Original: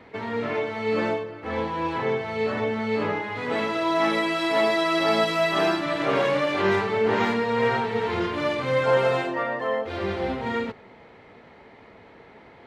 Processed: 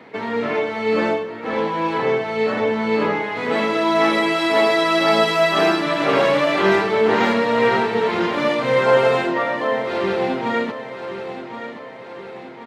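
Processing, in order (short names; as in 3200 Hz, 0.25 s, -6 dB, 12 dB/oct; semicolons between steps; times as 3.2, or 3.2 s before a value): HPF 140 Hz 24 dB/oct; on a send: feedback echo 1.074 s, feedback 51%, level -11.5 dB; on the sum: gain +5.5 dB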